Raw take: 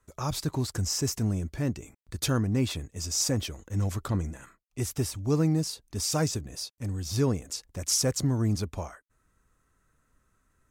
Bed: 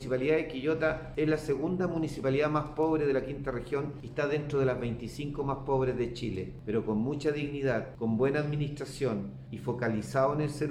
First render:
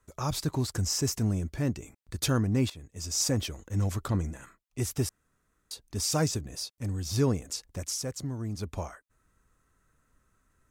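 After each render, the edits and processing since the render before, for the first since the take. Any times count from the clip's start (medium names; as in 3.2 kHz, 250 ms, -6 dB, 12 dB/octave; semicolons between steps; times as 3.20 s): 2.70–3.42 s: fade in equal-power, from -17 dB; 5.09–5.71 s: room tone; 7.78–8.71 s: dip -8.5 dB, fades 0.15 s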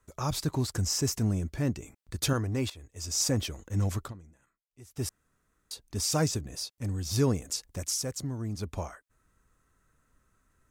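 2.33–3.08 s: peaking EQ 180 Hz -13 dB; 3.99–5.08 s: dip -20.5 dB, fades 0.15 s; 7.11–8.22 s: treble shelf 5.2 kHz +4 dB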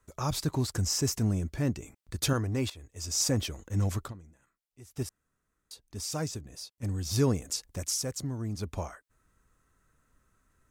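5.03–6.83 s: gain -6.5 dB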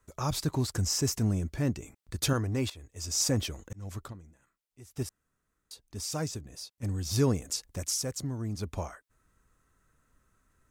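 3.21–4.12 s: slow attack 491 ms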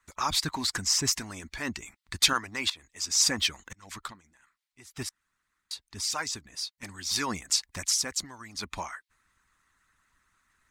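harmonic-percussive split harmonic -16 dB; ten-band graphic EQ 125 Hz -5 dB, 500 Hz -8 dB, 1 kHz +8 dB, 2 kHz +11 dB, 4 kHz +9 dB, 8 kHz +5 dB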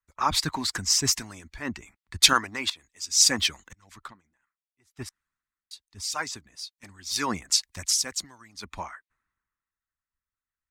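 three bands expanded up and down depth 70%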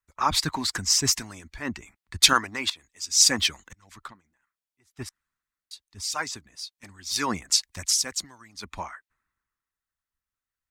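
trim +1 dB; peak limiter -2 dBFS, peak gain reduction 1.5 dB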